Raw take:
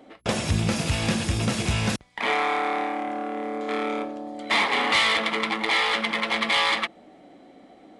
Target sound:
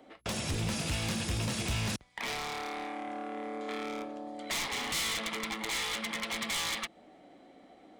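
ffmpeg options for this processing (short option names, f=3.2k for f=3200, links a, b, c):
-filter_complex "[0:a]aeval=exprs='0.106*(abs(mod(val(0)/0.106+3,4)-2)-1)':c=same,equalizer=f=220:t=o:w=2.3:g=-3,acrossover=split=290|3000[a][b][c];[b]acompressor=threshold=-33dB:ratio=6[d];[a][d][c]amix=inputs=3:normalize=0,volume=-4.5dB"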